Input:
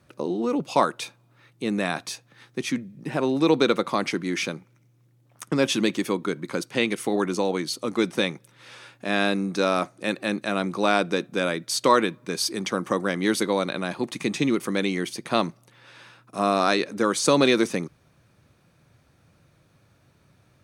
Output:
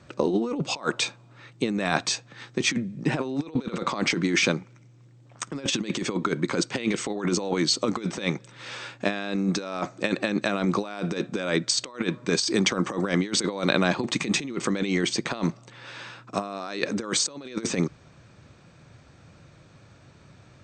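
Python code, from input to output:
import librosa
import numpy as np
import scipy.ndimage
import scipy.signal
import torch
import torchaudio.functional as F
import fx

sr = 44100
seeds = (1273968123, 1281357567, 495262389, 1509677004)

y = fx.over_compress(x, sr, threshold_db=-28.0, ratio=-0.5)
y = fx.brickwall_lowpass(y, sr, high_hz=8500.0)
y = y * 10.0 ** (3.0 / 20.0)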